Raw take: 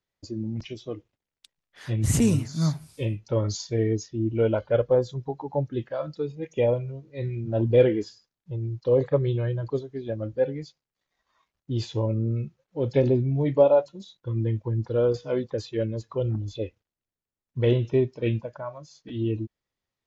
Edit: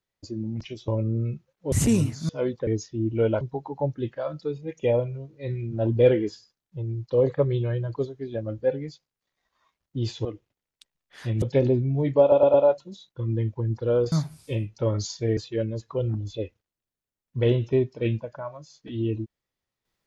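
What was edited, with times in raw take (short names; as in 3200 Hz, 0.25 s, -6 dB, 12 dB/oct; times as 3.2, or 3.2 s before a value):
0.88–2.05 swap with 11.99–12.83
2.62–3.87 swap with 15.2–15.58
4.61–5.15 cut
13.62 stutter 0.11 s, 4 plays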